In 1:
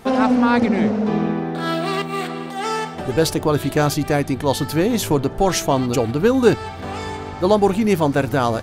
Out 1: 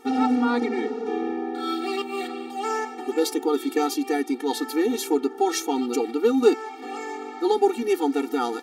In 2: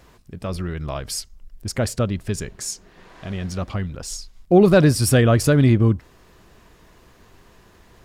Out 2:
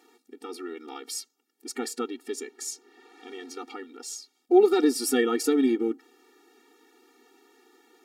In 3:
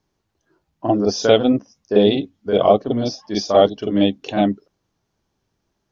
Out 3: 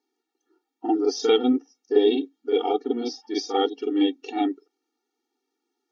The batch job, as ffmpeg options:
-af "bandreject=f=1000:w=6.7,afftfilt=real='re*eq(mod(floor(b*sr/1024/240),2),1)':imag='im*eq(mod(floor(b*sr/1024/240),2),1)':win_size=1024:overlap=0.75,volume=0.75"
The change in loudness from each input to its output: -5.5 LU, -6.5 LU, -6.0 LU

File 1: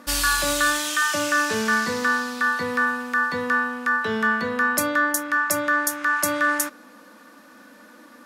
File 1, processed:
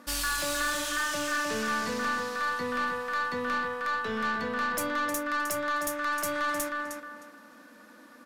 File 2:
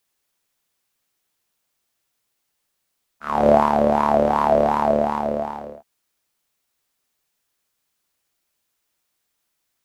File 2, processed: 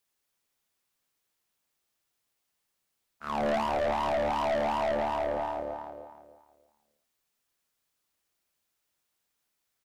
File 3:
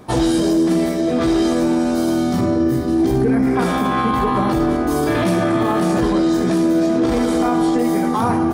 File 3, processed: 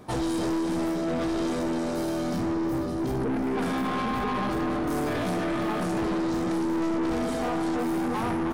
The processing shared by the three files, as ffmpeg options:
-filter_complex "[0:a]asplit=2[s0][s1];[s1]adelay=310,lowpass=f=4100:p=1,volume=0.531,asplit=2[s2][s3];[s3]adelay=310,lowpass=f=4100:p=1,volume=0.29,asplit=2[s4][s5];[s5]adelay=310,lowpass=f=4100:p=1,volume=0.29,asplit=2[s6][s7];[s7]adelay=310,lowpass=f=4100:p=1,volume=0.29[s8];[s0][s2][s4][s6][s8]amix=inputs=5:normalize=0,aeval=exprs='(tanh(8.91*val(0)+0.2)-tanh(0.2))/8.91':c=same,volume=0.531"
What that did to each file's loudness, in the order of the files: -8.0 LU, -11.0 LU, -10.5 LU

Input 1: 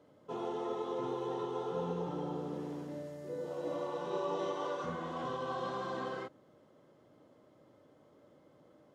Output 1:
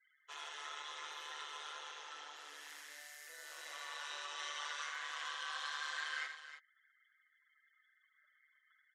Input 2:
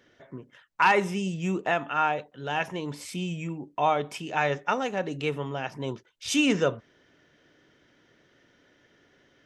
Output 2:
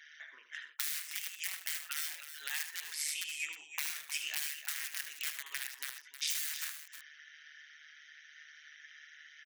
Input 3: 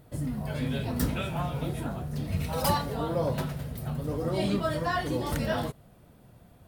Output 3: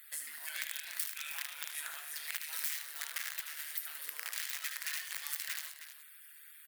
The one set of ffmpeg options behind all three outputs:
-filter_complex "[0:a]aeval=exprs='(mod(12.6*val(0)+1,2)-1)/12.6':c=same,alimiter=level_in=1.12:limit=0.0631:level=0:latency=1,volume=0.891,crystalizer=i=5:c=0,tremolo=f=150:d=0.71,acompressor=threshold=0.02:ratio=8,asoftclip=type=tanh:threshold=0.141,highpass=f=1800:t=q:w=3.1,afftfilt=real='re*gte(hypot(re,im),0.000794)':imag='im*gte(hypot(re,im),0.000794)':win_size=1024:overlap=0.75,asplit=2[s0][s1];[s1]aecho=0:1:76|122|314:0.335|0.119|0.282[s2];[s0][s2]amix=inputs=2:normalize=0"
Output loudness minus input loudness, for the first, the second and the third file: -6.0 LU, -9.5 LU, -8.0 LU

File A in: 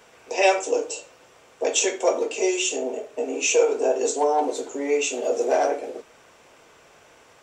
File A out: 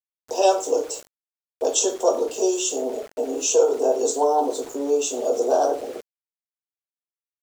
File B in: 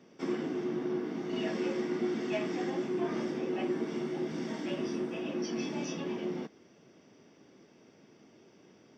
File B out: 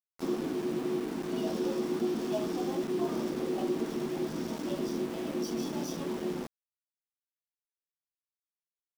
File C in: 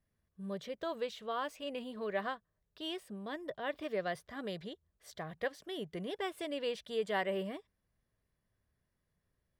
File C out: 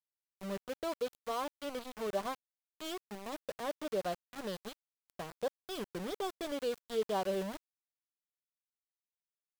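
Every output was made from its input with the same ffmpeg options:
-af "asuperstop=centerf=2100:order=4:qfactor=1,aeval=exprs='val(0)*gte(abs(val(0)),0.00944)':c=same,volume=1.19"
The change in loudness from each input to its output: +1.0 LU, +1.0 LU, +0.5 LU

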